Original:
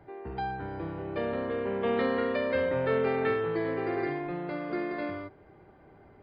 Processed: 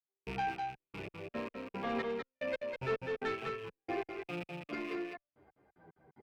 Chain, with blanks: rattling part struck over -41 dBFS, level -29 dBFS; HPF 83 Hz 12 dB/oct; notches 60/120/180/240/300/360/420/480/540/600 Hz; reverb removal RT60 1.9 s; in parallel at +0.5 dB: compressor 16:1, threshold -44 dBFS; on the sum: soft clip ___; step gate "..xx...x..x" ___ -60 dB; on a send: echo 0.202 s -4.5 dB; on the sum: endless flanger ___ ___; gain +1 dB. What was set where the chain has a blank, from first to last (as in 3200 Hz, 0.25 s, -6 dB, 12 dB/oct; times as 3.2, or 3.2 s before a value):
-26 dBFS, 112 bpm, 9.9 ms, -1.5 Hz